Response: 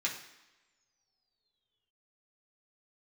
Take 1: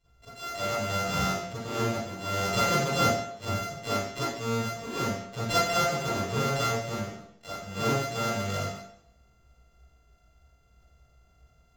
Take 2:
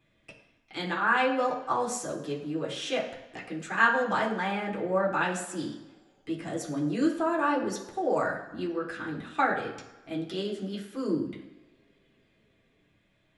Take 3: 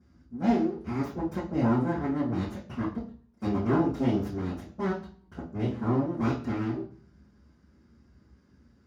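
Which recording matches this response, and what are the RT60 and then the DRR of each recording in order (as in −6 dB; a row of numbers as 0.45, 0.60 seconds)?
2; 0.70 s, non-exponential decay, 0.45 s; −11.0, −4.0, −11.5 decibels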